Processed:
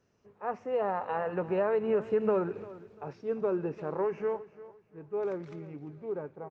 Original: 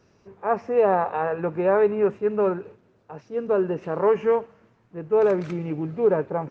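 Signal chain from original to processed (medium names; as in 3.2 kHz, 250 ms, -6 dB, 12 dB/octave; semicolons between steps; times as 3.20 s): Doppler pass-by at 2.37 s, 15 m/s, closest 3.1 m; compression 6:1, threshold -34 dBFS, peak gain reduction 15.5 dB; feedback delay 346 ms, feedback 29%, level -17.5 dB; trim +9 dB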